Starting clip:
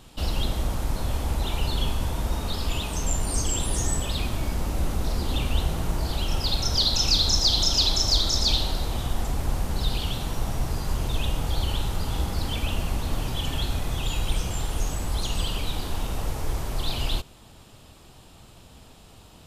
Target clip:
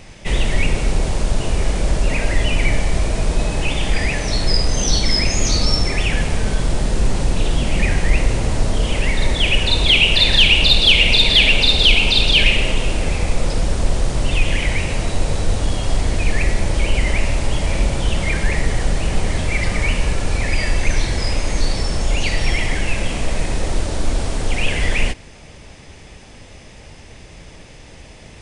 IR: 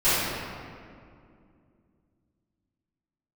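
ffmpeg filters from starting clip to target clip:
-af "asetrate=30209,aresample=44100,acontrast=69,volume=3dB"

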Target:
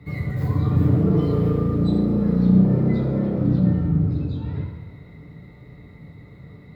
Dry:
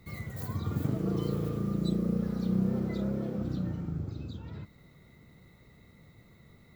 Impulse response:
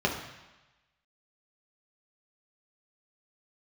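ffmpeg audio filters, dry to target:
-filter_complex "[0:a]asoftclip=type=tanh:threshold=-22dB[link_01];[1:a]atrim=start_sample=2205,asetrate=32634,aresample=44100[link_02];[link_01][link_02]afir=irnorm=-1:irlink=0,volume=-4dB"

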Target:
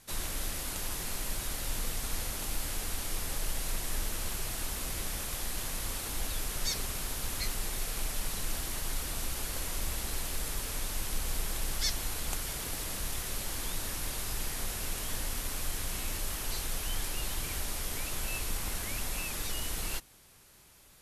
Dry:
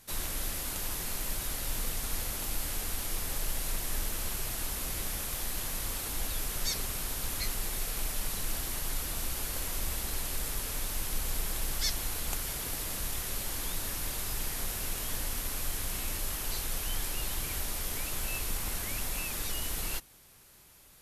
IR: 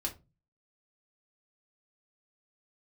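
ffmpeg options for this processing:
-af "lowpass=12000"

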